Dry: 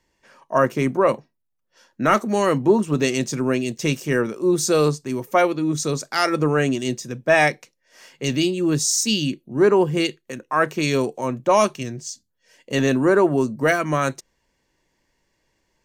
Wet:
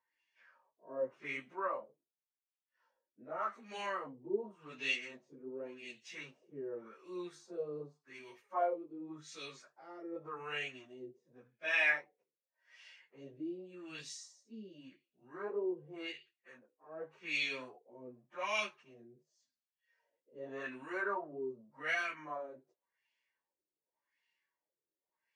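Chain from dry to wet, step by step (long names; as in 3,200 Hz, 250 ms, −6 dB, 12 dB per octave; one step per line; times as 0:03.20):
first difference
harmonic and percussive parts rebalanced percussive −6 dB
auto-filter low-pass sine 1.4 Hz 380–2,800 Hz
time stretch by phase vocoder 1.6×
flanger 1.4 Hz, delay 4.4 ms, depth 6 ms, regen −65%
level +5 dB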